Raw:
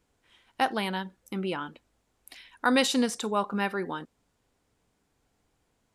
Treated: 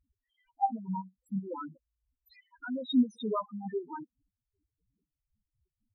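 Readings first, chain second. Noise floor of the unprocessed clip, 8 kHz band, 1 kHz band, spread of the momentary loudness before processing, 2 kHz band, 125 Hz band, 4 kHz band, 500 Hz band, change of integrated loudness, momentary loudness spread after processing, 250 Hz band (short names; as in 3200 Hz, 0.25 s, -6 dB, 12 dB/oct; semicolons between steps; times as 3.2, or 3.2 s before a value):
-75 dBFS, under -30 dB, -4.5 dB, 13 LU, -18.5 dB, n/a, -12.5 dB, -7.5 dB, -5.0 dB, 17 LU, -2.0 dB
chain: step gate "x..x.x.x..x.x" 119 bpm -12 dB; loudest bins only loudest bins 2; gain +3.5 dB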